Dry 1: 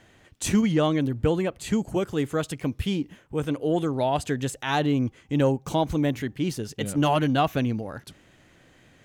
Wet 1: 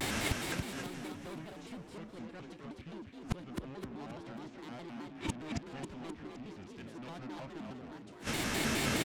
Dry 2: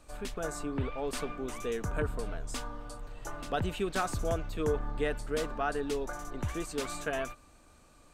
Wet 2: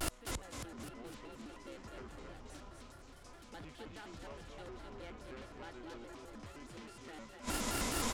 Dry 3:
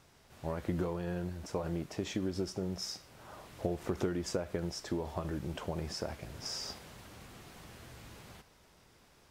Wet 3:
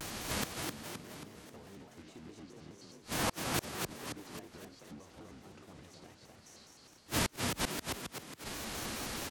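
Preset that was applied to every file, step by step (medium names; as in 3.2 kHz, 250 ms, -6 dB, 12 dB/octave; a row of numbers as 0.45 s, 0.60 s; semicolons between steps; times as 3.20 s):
formants flattened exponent 0.6; peaking EQ 260 Hz +12 dB 0.22 oct; in parallel at -7 dB: wavefolder -22 dBFS; on the sum: low-pass that closes with the level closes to 2.9 kHz, closed at -21 dBFS; saturation -23.5 dBFS; Schroeder reverb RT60 0.58 s, combs from 26 ms, DRR 20 dB; inverted gate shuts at -37 dBFS, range -38 dB; frequency-shifting echo 265 ms, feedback 51%, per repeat +30 Hz, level -3.5 dB; vibrato with a chosen wave square 4.8 Hz, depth 250 cents; trim +17.5 dB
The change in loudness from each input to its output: -15.0 LU, -10.5 LU, 0.0 LU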